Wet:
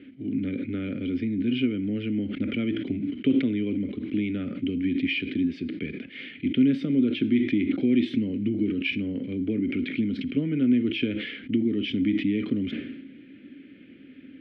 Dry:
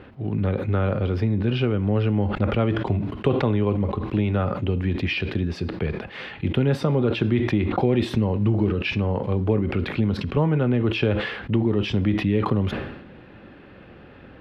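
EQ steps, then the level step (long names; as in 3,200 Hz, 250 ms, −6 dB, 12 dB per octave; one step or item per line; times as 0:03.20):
formant filter i
notch filter 1,100 Hz, Q 7.9
+8.5 dB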